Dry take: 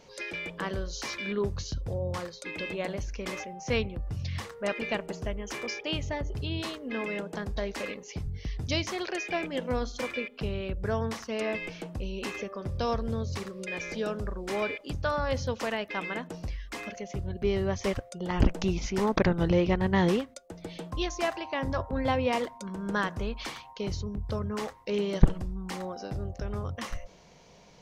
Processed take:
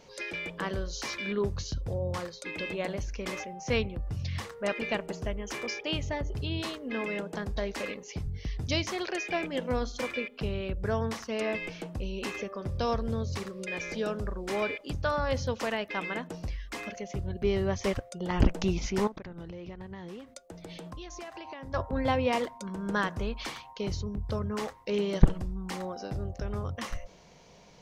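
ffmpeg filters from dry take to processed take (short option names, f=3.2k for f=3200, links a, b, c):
-filter_complex "[0:a]asettb=1/sr,asplit=3[a][b][c];[a]atrim=end=19.074[d];[b]atrim=start=19.07:end=21.74,asetpts=PTS-STARTPTS,afade=t=in:d=0.004:c=qsin,afade=t=out:st=2.666:d=0.004:c=qsin,acompressor=threshold=-38dB:ratio=12:attack=3.2:release=140:knee=1:detection=peak[e];[c]atrim=start=21.736[f];[d][e]acrossfade=d=0.004:c1=hsin:c2=qsin[g];[g][f]acrossfade=d=0.004:c1=qsin:c2=hsin"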